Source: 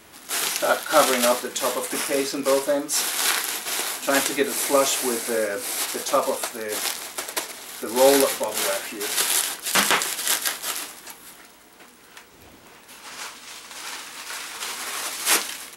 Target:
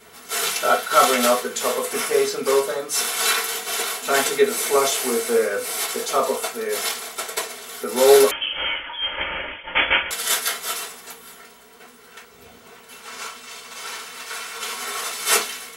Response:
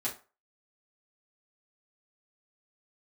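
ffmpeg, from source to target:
-filter_complex "[1:a]atrim=start_sample=2205,asetrate=79380,aresample=44100[s0];[0:a][s0]afir=irnorm=-1:irlink=0,asettb=1/sr,asplit=3[s1][s2][s3];[s1]atrim=end=8.314[s4];[s2]atrim=start=8.31:end=10.11,asetpts=PTS-STARTPTS,afade=t=in:d=0.004:c=qsin,afade=t=out:st=1.796:d=0.004:c=qsin,lowpass=f=3100:t=q:w=0.5098,lowpass=f=3100:t=q:w=0.6013,lowpass=f=3100:t=q:w=0.9,lowpass=f=3100:t=q:w=2.563,afreqshift=-3600[s5];[s3]atrim=start=10.106[s6];[s4][s5]acrossfade=d=0.004:c1=hsin:c2=qsin[s7];[s7][s6]acrossfade=d=0.004:c1=qsin:c2=hsin,volume=1.5"

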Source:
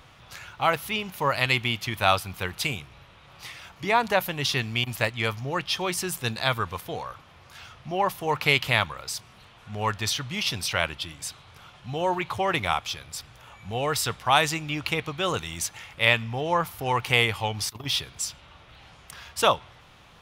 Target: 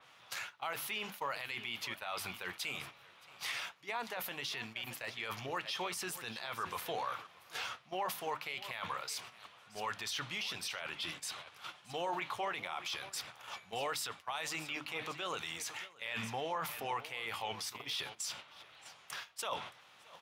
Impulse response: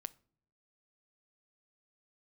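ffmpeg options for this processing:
-filter_complex "[0:a]lowshelf=f=420:g=-12,bandreject=f=50:t=h:w=6,bandreject=f=100:t=h:w=6,bandreject=f=150:t=h:w=6,bandreject=f=200:t=h:w=6,bandreject=f=250:t=h:w=6,bandreject=f=300:t=h:w=6,areverse,acompressor=threshold=0.0141:ratio=5,areverse,highpass=150,asplit=2[s0][s1];[s1]aecho=0:1:622:0.133[s2];[s0][s2]amix=inputs=2:normalize=0,agate=range=0.282:threshold=0.00355:ratio=16:detection=peak,alimiter=level_in=3.16:limit=0.0631:level=0:latency=1:release=21,volume=0.316,flanger=delay=0:depth=9.3:regen=-75:speed=1.5:shape=sinusoidal,adynamicequalizer=threshold=0.00112:dfrequency=4100:dqfactor=0.7:tfrequency=4100:tqfactor=0.7:attack=5:release=100:ratio=0.375:range=2.5:mode=cutabove:tftype=highshelf,volume=3.16"

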